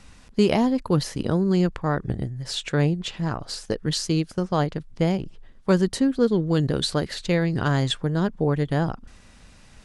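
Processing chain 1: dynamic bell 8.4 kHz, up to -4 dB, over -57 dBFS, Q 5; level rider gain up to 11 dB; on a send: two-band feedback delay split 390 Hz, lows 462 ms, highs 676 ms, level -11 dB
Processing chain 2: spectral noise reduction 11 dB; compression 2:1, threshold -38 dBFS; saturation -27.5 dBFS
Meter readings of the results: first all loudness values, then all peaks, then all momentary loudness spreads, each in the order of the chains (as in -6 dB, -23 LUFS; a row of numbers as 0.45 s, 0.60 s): -17.0 LUFS, -37.0 LUFS; -1.0 dBFS, -27.5 dBFS; 8 LU, 4 LU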